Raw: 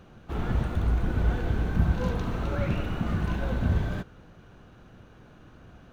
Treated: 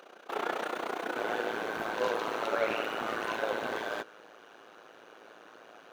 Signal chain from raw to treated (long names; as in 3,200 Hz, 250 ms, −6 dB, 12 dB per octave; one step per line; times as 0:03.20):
high-pass filter 400 Hz 24 dB per octave
amplitude modulation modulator 30 Hz, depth 70%, from 0:01.16 modulator 110 Hz
level +8.5 dB